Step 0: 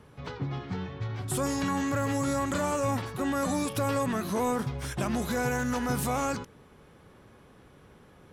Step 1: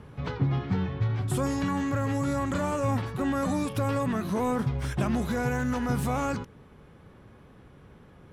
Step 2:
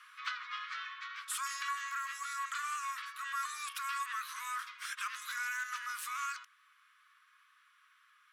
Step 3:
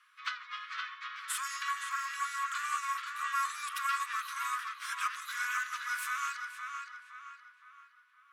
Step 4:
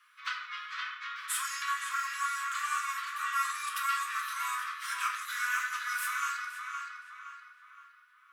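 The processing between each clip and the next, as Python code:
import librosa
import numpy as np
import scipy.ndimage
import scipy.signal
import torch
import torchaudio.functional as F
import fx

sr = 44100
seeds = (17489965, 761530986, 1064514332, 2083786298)

y1 = fx.bass_treble(x, sr, bass_db=5, treble_db=-6)
y1 = fx.rider(y1, sr, range_db=4, speed_s=0.5)
y1 = fx.wow_flutter(y1, sr, seeds[0], rate_hz=2.1, depth_cents=20.0)
y2 = scipy.signal.sosfilt(scipy.signal.butter(16, 1100.0, 'highpass', fs=sr, output='sos'), y1)
y2 = fx.rider(y2, sr, range_db=4, speed_s=2.0)
y3 = fx.echo_filtered(y2, sr, ms=517, feedback_pct=59, hz=4100.0, wet_db=-3.0)
y3 = fx.upward_expand(y3, sr, threshold_db=-57.0, expansion=1.5)
y3 = y3 * 10.0 ** (3.5 / 20.0)
y4 = scipy.signal.sosfilt(scipy.signal.cheby1(2, 1.0, 980.0, 'highpass', fs=sr, output='sos'), y3)
y4 = fx.high_shelf(y4, sr, hz=11000.0, db=7.5)
y4 = fx.room_shoebox(y4, sr, seeds[1], volume_m3=120.0, walls='mixed', distance_m=0.81)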